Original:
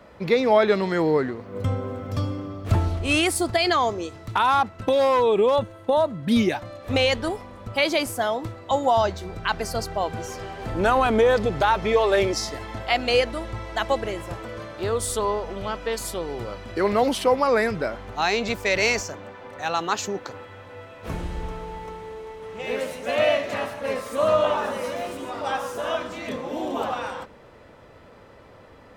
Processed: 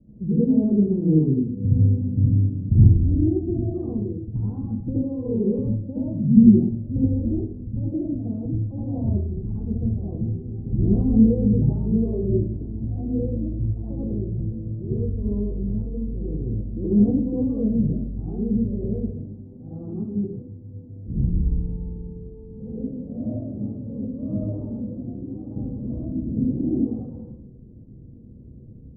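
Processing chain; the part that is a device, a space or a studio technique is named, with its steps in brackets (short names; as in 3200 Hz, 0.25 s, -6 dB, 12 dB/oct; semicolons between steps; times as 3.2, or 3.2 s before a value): next room (LPF 260 Hz 24 dB/oct; reverb RT60 0.60 s, pre-delay 62 ms, DRR -8 dB); 25.56–26.85 tilt -2 dB/oct; gain +1 dB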